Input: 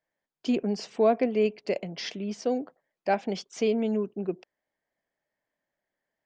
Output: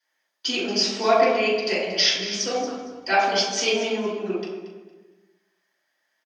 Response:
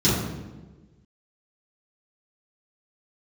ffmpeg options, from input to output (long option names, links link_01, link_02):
-filter_complex "[0:a]aecho=1:1:230|460|690:0.2|0.0459|0.0106[link_01];[1:a]atrim=start_sample=2205,asetrate=40572,aresample=44100[link_02];[link_01][link_02]afir=irnorm=-1:irlink=0,asettb=1/sr,asplit=3[link_03][link_04][link_05];[link_03]atrim=end=1.004[link_06];[link_04]atrim=start=1:end=3.23,asetpts=PTS-STARTPTS,afade=type=in:duration=0.004:curve=qsin,afade=type=out:start_time=2.226:duration=0.004:curve=qsin,aeval=exprs='val(0)+0.1*(sin(2*PI*60*n/s)+sin(2*PI*2*60*n/s)/2+sin(2*PI*3*60*n/s)/3+sin(2*PI*4*60*n/s)/4+sin(2*PI*5*60*n/s)/5)':channel_layout=same[link_07];[link_05]atrim=start=3.226[link_08];[link_06][link_07]acrossfade=duration=0.004:curve1=hsin:curve2=qsin[link_09];[link_09][link_08]acrossfade=duration=0.004:curve1=qsin:curve2=hsin,highpass=1200"